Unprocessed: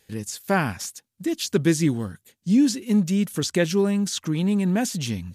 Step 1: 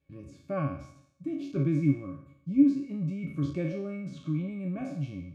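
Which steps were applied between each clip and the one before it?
peak hold with a decay on every bin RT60 0.69 s
resonances in every octave C#, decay 0.11 s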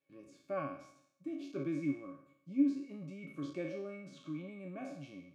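high-pass filter 330 Hz 12 dB per octave
level −4 dB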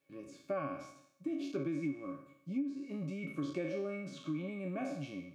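downward compressor 16 to 1, threshold −39 dBFS, peak gain reduction 16.5 dB
level +6.5 dB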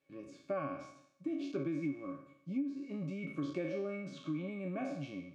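high-frequency loss of the air 54 metres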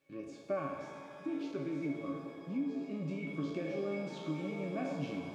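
speech leveller within 4 dB 0.5 s
reverb with rising layers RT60 3 s, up +7 semitones, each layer −8 dB, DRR 5 dB

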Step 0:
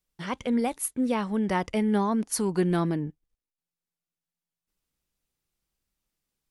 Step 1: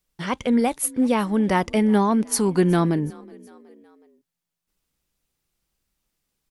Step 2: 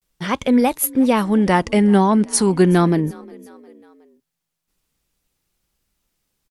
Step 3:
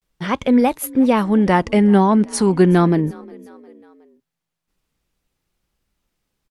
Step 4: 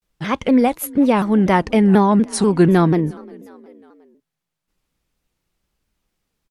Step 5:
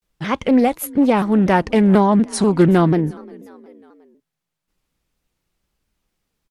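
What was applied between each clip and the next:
echo with shifted repeats 370 ms, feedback 53%, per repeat +35 Hz, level −23.5 dB; level +6 dB
pitch vibrato 0.38 Hz 70 cents; level +4.5 dB
high-shelf EQ 4,500 Hz −9 dB; level +1 dB
pitch modulation by a square or saw wave saw down 4.1 Hz, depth 160 cents
highs frequency-modulated by the lows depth 0.21 ms

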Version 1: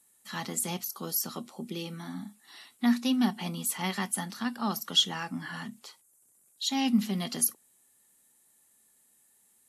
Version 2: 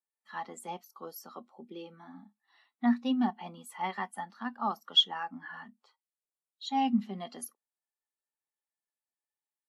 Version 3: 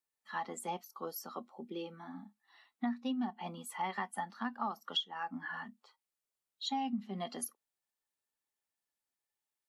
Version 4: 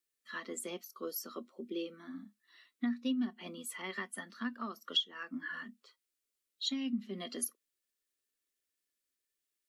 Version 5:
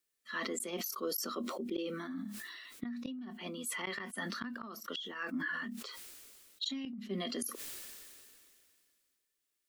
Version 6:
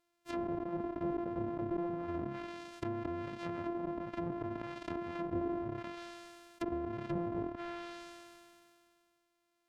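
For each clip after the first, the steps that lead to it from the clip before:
high-pass filter 760 Hz 12 dB per octave; spectral tilt −4.5 dB per octave; every bin expanded away from the loudest bin 1.5 to 1; level +8 dB
downward compressor 10 to 1, threshold −35 dBFS, peak gain reduction 17.5 dB; level +2.5 dB
phaser with its sweep stopped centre 340 Hz, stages 4; level +4 dB
gate with flip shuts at −29 dBFS, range −24 dB; level that may fall only so fast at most 25 dB per second; level +3 dB
samples sorted by size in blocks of 128 samples; gain into a clipping stage and back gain 33 dB; treble cut that deepens with the level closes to 800 Hz, closed at −36.5 dBFS; level +3.5 dB

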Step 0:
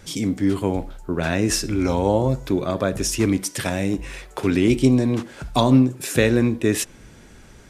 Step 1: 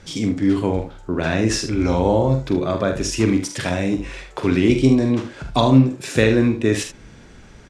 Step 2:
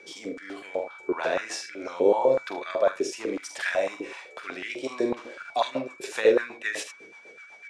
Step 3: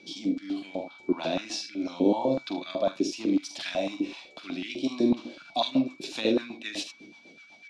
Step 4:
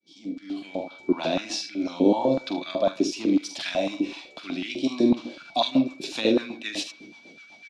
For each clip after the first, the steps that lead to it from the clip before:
low-pass filter 6,300 Hz 12 dB per octave; ambience of single reflections 45 ms −7.5 dB, 75 ms −10.5 dB; level +1 dB
steady tone 2,300 Hz −40 dBFS; rotating-speaker cabinet horn 0.7 Hz, later 8 Hz, at 0:04.78; high-pass on a step sequencer 8 Hz 400–1,700 Hz; level −6 dB
drawn EQ curve 110 Hz 0 dB, 190 Hz +7 dB, 300 Hz +7 dB, 440 Hz −15 dB, 670 Hz −5 dB, 1,800 Hz −18 dB, 2,500 Hz −5 dB, 4,100 Hz +4 dB, 8,100 Hz −12 dB; level +3.5 dB
fade in at the beginning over 0.84 s; far-end echo of a speakerphone 160 ms, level −24 dB; level +3.5 dB

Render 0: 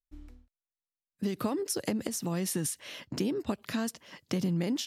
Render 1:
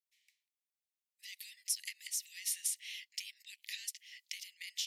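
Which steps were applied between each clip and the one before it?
Butterworth high-pass 1,900 Hz 96 dB per octave
level −1 dB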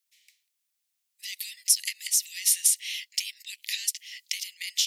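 tilt shelving filter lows −7.5 dB, about 1,400 Hz
level +7 dB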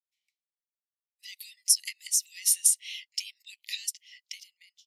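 fade-out on the ending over 0.76 s
every bin expanded away from the loudest bin 1.5 to 1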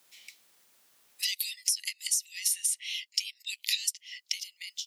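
brickwall limiter −16.5 dBFS, peak gain reduction 9.5 dB
multiband upward and downward compressor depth 100%
level +2 dB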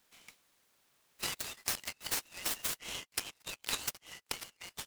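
short delay modulated by noise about 3,300 Hz, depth 0.041 ms
level −6 dB

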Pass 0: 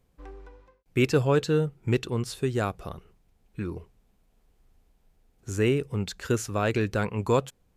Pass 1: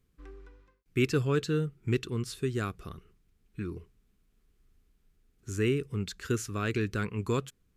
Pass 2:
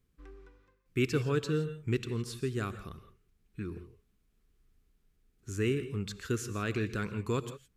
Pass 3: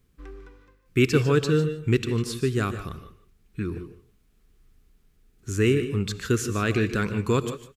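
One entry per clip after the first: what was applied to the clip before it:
flat-topped bell 700 Hz −11 dB 1.1 octaves; level −3.5 dB
convolution reverb, pre-delay 3 ms, DRR 11.5 dB; level −2.5 dB
single-tap delay 150 ms −14 dB; level +9 dB

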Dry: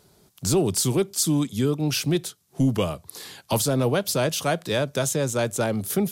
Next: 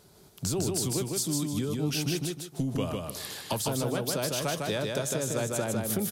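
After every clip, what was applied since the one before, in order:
downward compressor, threshold −28 dBFS, peak gain reduction 11 dB
on a send: repeating echo 154 ms, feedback 30%, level −3 dB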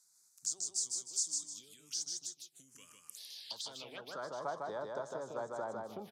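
band-pass filter sweep 6,800 Hz → 980 Hz, 0:03.27–0:04.36
phaser swept by the level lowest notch 480 Hz, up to 2,600 Hz, full sweep at −39 dBFS
level +1.5 dB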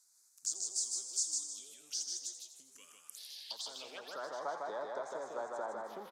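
high-pass filter 310 Hz 12 dB per octave
on a send: echo with shifted repeats 84 ms, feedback 62%, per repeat +140 Hz, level −11 dB

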